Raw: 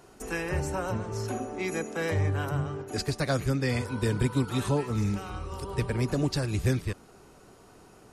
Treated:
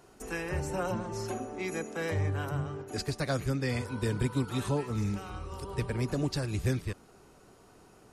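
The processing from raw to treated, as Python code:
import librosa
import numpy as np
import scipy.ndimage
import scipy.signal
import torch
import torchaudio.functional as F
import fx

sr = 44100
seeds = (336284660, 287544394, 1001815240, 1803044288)

y = fx.comb(x, sr, ms=5.7, depth=0.8, at=(0.69, 1.34))
y = y * 10.0 ** (-3.5 / 20.0)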